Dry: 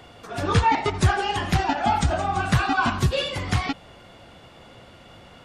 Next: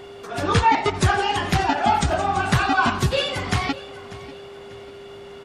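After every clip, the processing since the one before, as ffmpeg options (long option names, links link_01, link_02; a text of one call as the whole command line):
ffmpeg -i in.wav -af "lowshelf=frequency=130:gain=-6,aecho=1:1:592|1184|1776:0.126|0.0453|0.0163,aeval=exprs='val(0)+0.00891*sin(2*PI*400*n/s)':channel_layout=same,volume=3dB" out.wav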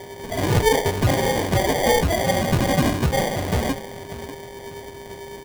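ffmpeg -i in.wav -af "aresample=16000,asoftclip=type=tanh:threshold=-15.5dB,aresample=44100,flanger=delay=8:depth=5:regen=55:speed=1.8:shape=sinusoidal,acrusher=samples=33:mix=1:aa=0.000001,volume=7dB" out.wav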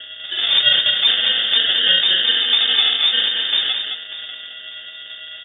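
ffmpeg -i in.wav -af "aecho=1:1:216:0.501,lowpass=frequency=3100:width_type=q:width=0.5098,lowpass=frequency=3100:width_type=q:width=0.6013,lowpass=frequency=3100:width_type=q:width=0.9,lowpass=frequency=3100:width_type=q:width=2.563,afreqshift=-3700,volume=2.5dB" out.wav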